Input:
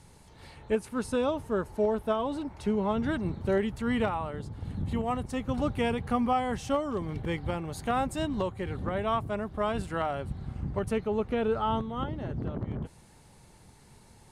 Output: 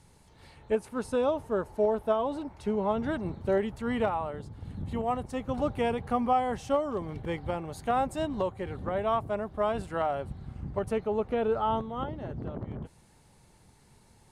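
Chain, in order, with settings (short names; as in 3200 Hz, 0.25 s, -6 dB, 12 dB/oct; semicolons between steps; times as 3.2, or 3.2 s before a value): dynamic EQ 660 Hz, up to +7 dB, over -42 dBFS, Q 0.85; gain -4 dB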